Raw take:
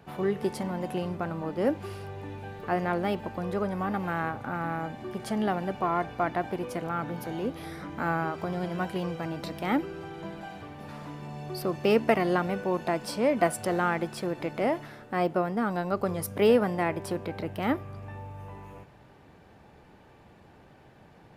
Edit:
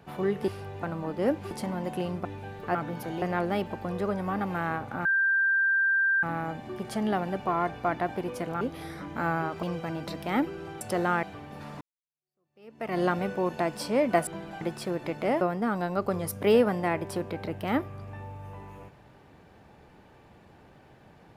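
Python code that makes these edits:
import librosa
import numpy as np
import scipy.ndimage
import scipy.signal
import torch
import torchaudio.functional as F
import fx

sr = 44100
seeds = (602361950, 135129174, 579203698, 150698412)

y = fx.edit(x, sr, fx.swap(start_s=0.48, length_s=0.74, other_s=1.9, other_length_s=0.35),
    fx.insert_tone(at_s=4.58, length_s=1.18, hz=1580.0, db=-21.0),
    fx.move(start_s=6.96, length_s=0.47, to_s=2.75),
    fx.cut(start_s=8.45, length_s=0.54),
    fx.swap(start_s=10.17, length_s=0.34, other_s=13.55, other_length_s=0.42),
    fx.fade_in_span(start_s=11.09, length_s=1.17, curve='exp'),
    fx.cut(start_s=14.77, length_s=0.59), tone=tone)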